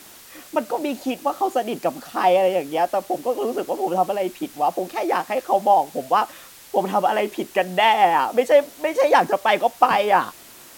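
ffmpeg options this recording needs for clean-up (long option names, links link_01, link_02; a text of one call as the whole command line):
ffmpeg -i in.wav -af "afwtdn=0.0063" out.wav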